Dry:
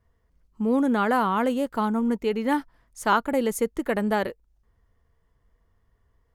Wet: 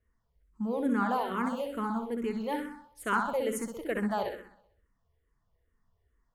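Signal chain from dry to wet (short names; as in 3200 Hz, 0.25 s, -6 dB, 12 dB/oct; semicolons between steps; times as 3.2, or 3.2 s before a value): flutter echo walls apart 10.9 m, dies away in 0.67 s; endless phaser -2.3 Hz; gain -5.5 dB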